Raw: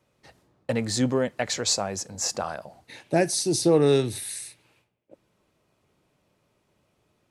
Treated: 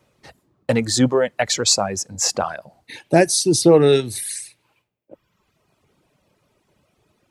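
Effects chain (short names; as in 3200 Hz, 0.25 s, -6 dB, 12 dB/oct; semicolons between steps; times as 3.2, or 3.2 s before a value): reverb removal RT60 1.2 s; gain +8 dB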